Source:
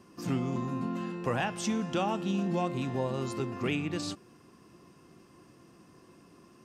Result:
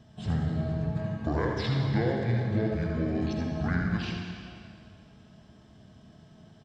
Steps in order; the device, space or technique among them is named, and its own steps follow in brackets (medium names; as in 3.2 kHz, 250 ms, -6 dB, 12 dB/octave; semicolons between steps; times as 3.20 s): monster voice (pitch shift -8.5 st; bass shelf 170 Hz +3 dB; delay 80 ms -7 dB; reverberation RT60 2.2 s, pre-delay 55 ms, DRR 2.5 dB)